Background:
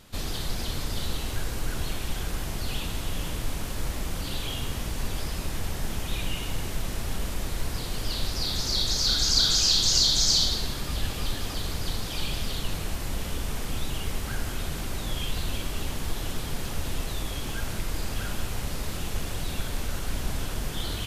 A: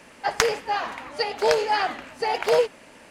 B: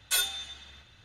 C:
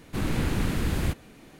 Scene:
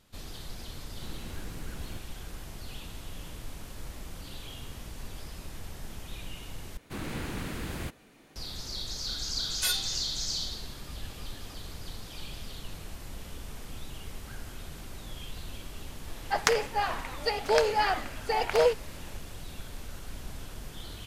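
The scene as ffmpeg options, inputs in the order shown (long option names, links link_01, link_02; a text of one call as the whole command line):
ffmpeg -i bed.wav -i cue0.wav -i cue1.wav -i cue2.wav -filter_complex "[3:a]asplit=2[link_01][link_02];[0:a]volume=-11dB[link_03];[link_02]lowshelf=frequency=270:gain=-7[link_04];[link_03]asplit=2[link_05][link_06];[link_05]atrim=end=6.774[link_07];[link_04]atrim=end=1.59,asetpts=PTS-STARTPTS,volume=-5dB[link_08];[link_06]atrim=start=8.356[link_09];[link_01]atrim=end=1.59,asetpts=PTS-STARTPTS,volume=-18dB,afade=type=in:duration=0.004:curve=hsin,afade=type=out:start_time=1.586:duration=0.004:curve=hsin,adelay=870[link_10];[2:a]atrim=end=1.04,asetpts=PTS-STARTPTS,volume=-3dB,afade=type=in:duration=0.004:curve=hsin,afade=type=out:start_time=1.036:duration=0.004:curve=hsin,adelay=9510[link_11];[1:a]atrim=end=3.1,asetpts=PTS-STARTPTS,volume=-3.5dB,afade=type=in:duration=0.004:curve=hsin,afade=type=out:start_time=3.096:duration=0.004:curve=hsin,adelay=16070[link_12];[link_07][link_08]acrossfade=duration=0.004:curve1=hsin:curve2=hsin[link_13];[link_13][link_09]acrossfade=duration=0.004:curve1=hsin:curve2=hsin[link_14];[link_14][link_10][link_11][link_12]amix=inputs=4:normalize=0" out.wav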